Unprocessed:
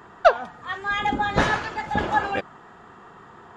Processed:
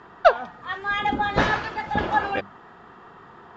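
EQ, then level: low-pass 5.7 kHz 24 dB/octave; hum notches 50/100/150/200 Hz; 0.0 dB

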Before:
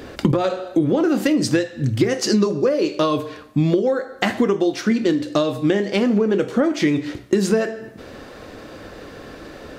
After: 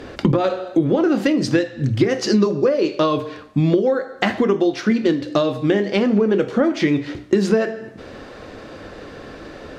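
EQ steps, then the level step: hum notches 60/120/180/240/300 Hz; dynamic bell 8.1 kHz, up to -5 dB, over -50 dBFS, Q 1.6; distance through air 50 m; +1.5 dB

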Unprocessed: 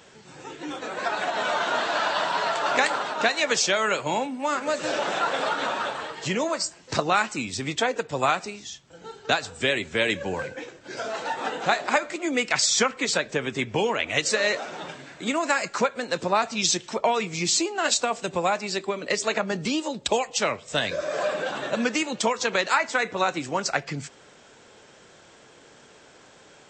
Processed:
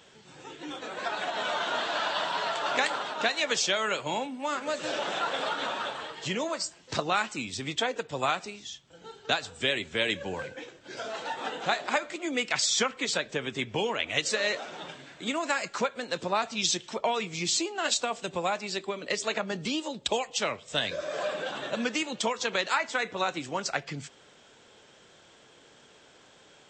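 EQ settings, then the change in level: peaking EQ 3.3 kHz +5.5 dB 0.5 oct; -5.5 dB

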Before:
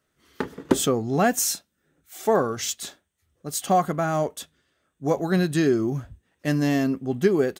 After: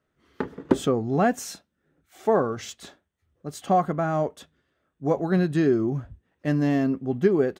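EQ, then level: low-pass 1.6 kHz 6 dB/octave; 0.0 dB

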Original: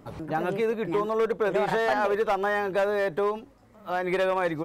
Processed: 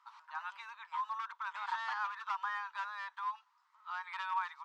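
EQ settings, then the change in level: rippled Chebyshev high-pass 920 Hz, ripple 3 dB; distance through air 180 m; peaking EQ 2.3 kHz -14.5 dB 2.4 oct; +6.5 dB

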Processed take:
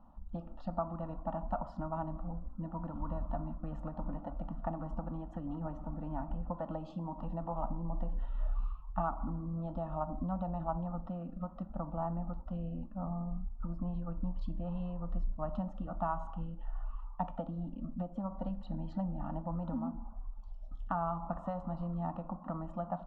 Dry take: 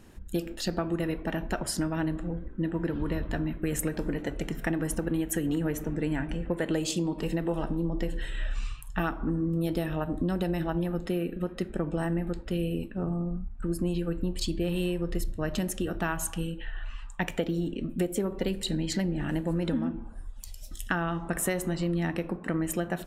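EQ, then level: four-pole ladder low-pass 1.7 kHz, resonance 55%; static phaser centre 430 Hz, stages 6; static phaser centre 900 Hz, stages 4; +9.0 dB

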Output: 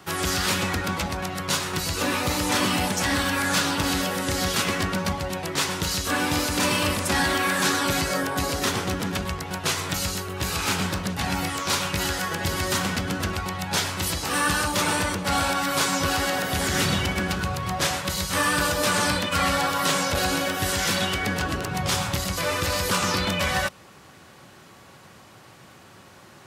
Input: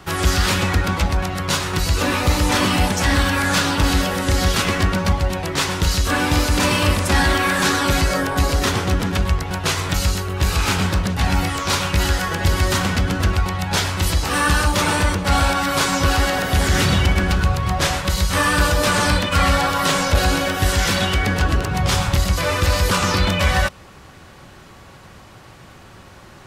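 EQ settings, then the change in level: high-pass 120 Hz 12 dB/octave; treble shelf 6.4 kHz +5 dB; -5.0 dB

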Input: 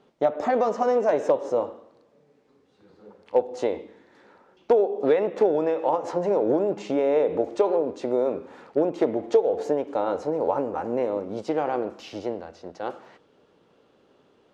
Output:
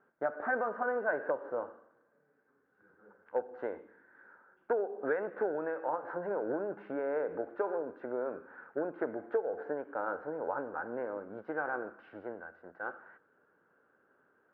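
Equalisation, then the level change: four-pole ladder low-pass 1.6 kHz, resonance 85%; bass shelf 100 Hz -7 dB; 0.0 dB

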